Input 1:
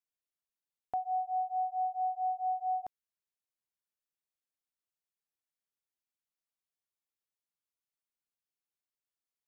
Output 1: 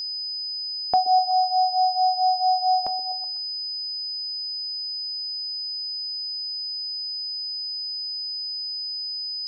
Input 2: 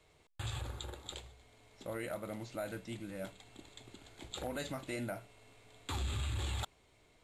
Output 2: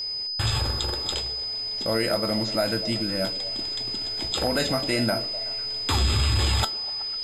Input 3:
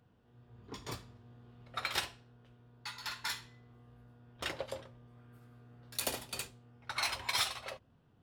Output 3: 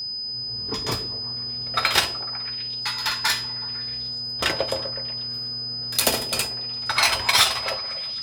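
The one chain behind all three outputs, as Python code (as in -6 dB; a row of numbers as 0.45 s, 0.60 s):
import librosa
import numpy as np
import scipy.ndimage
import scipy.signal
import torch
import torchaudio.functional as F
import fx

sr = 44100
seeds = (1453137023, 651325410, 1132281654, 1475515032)

y = fx.comb_fb(x, sr, f0_hz=220.0, decay_s=0.21, harmonics='all', damping=0.0, mix_pct=60)
y = fx.echo_stepped(y, sr, ms=125, hz=350.0, octaves=0.7, feedback_pct=70, wet_db=-10)
y = y + 10.0 ** (-49.0 / 20.0) * np.sin(2.0 * np.pi * 5000.0 * np.arange(len(y)) / sr)
y = y * 10.0 ** (-26 / 20.0) / np.sqrt(np.mean(np.square(y)))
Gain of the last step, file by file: +21.5 dB, +21.0 dB, +21.0 dB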